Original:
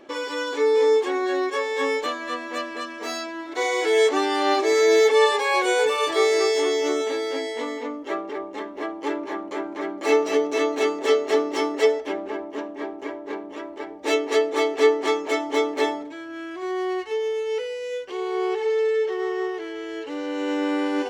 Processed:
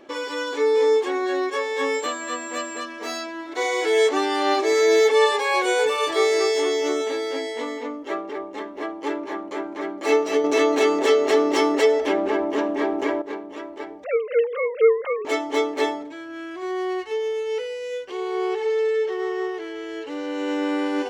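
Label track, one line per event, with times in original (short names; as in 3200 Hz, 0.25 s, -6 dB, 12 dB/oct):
1.930000	2.790000	whine 7500 Hz -37 dBFS
10.440000	13.220000	fast leveller amount 50%
14.040000	15.250000	sine-wave speech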